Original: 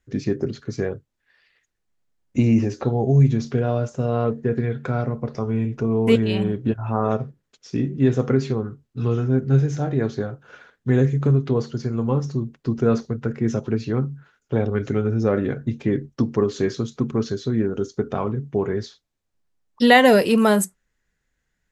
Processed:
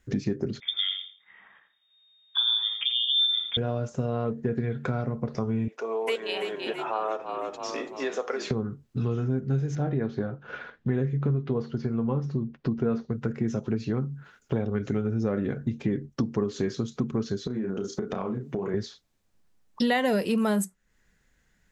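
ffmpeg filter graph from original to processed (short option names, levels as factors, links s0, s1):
-filter_complex "[0:a]asettb=1/sr,asplit=3[s0][s1][s2];[s0]atrim=end=0.604[s3];[s1]atrim=start=0.6:end=3.57,asetpts=PTS-STARTPTS,afade=t=in:d=0.004:c=qsin,afade=t=out:st=2.966:d=0.004:c=qsin,lowpass=f=3100:t=q:w=0.5098,lowpass=f=3100:t=q:w=0.6013,lowpass=f=3100:t=q:w=0.9,lowpass=f=3100:t=q:w=2.563,afreqshift=-3700,aecho=1:1:84|168|252:0.398|0.0677|0.0115,atrim=end_sample=130977[s4];[s2]atrim=start=3.566[s5];[s3][s4]acrossfade=d=0.004:c1=hsin:c2=qsin[s6];[s6][s5]acrossfade=d=0.004:c1=qsin:c2=hsin,asettb=1/sr,asplit=3[s7][s8][s9];[s7]atrim=end=5.684[s10];[s8]atrim=start=5.68:end=8.51,asetpts=PTS-STARTPTS,afade=t=in:d=0.004:c=qsin,afade=t=out:st=2.826:d=0.004:c=qsin,highpass=f=510:w=0.5412,highpass=f=510:w=1.3066,asplit=6[s11][s12][s13][s14][s15][s16];[s12]adelay=333,afreqshift=-40,volume=0.299[s17];[s13]adelay=666,afreqshift=-80,volume=0.15[s18];[s14]adelay=999,afreqshift=-120,volume=0.075[s19];[s15]adelay=1332,afreqshift=-160,volume=0.0372[s20];[s16]adelay=1665,afreqshift=-200,volume=0.0186[s21];[s11][s17][s18][s19][s20][s21]amix=inputs=6:normalize=0,atrim=end_sample=124803[s22];[s9]atrim=start=8.506[s23];[s10][s22]acrossfade=d=0.004:c1=hsin:c2=qsin[s24];[s24][s23]acrossfade=d=0.004:c1=qsin:c2=hsin,asettb=1/sr,asplit=3[s25][s26][s27];[s25]atrim=end=9.754[s28];[s26]atrim=start=9.75:end=13.1,asetpts=PTS-STARTPTS,afade=t=in:d=0.004:c=qsin,afade=t=out:st=3.346:d=0.004:c=qsin,lowpass=3300,asplit=2[s29][s30];[s30]adelay=13,volume=0.2[s31];[s29][s31]amix=inputs=2:normalize=0,atrim=end_sample=147735[s32];[s27]atrim=start=13.096[s33];[s28][s32]acrossfade=d=0.004:c1=hsin:c2=qsin[s34];[s34][s33]acrossfade=d=0.004:c1=qsin:c2=hsin,asettb=1/sr,asplit=3[s35][s36][s37];[s35]atrim=end=17.474[s38];[s36]atrim=start=17.47:end=18.74,asetpts=PTS-STARTPTS,afade=t=in:d=0.004:c=qsin,afade=t=out:st=1.266:d=0.004:c=qsin,highpass=160,asplit=2[s39][s40];[s40]adelay=32,volume=0.708[s41];[s39][s41]amix=inputs=2:normalize=0,atrim=end_sample=56007,acompressor=threshold=0.0316:ratio=4:attack=3.2:release=140:knee=1:detection=peak[s42];[s37]atrim=start=18.736[s43];[s38][s42]acrossfade=d=0.004:c1=hsin:c2=qsin[s44];[s44][s43]acrossfade=d=0.004:c1=qsin:c2=hsin,equalizer=f=200:t=o:w=0.31:g=5,acompressor=threshold=0.0158:ratio=3,volume=2.24"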